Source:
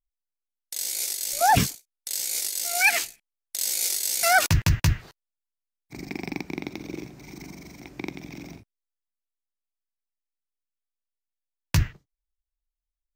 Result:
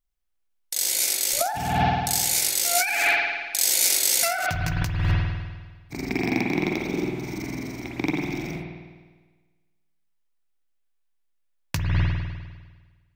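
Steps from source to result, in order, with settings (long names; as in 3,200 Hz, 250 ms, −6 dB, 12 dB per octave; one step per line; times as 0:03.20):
spring reverb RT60 1.4 s, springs 50 ms, chirp 65 ms, DRR −2 dB
compressor whose output falls as the input rises −24 dBFS, ratio −1
level +2 dB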